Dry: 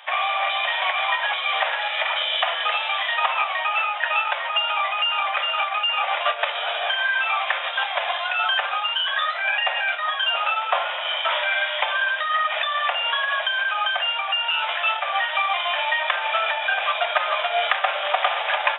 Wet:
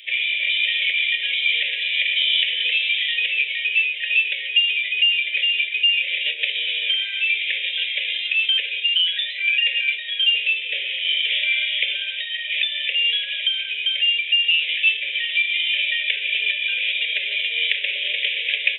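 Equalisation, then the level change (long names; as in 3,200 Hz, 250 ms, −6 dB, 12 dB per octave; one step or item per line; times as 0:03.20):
elliptic band-stop filter 420–2,300 Hz, stop band 50 dB
low-shelf EQ 420 Hz −5.5 dB
flat-topped bell 1,000 Hz −14.5 dB 1.1 octaves
+6.5 dB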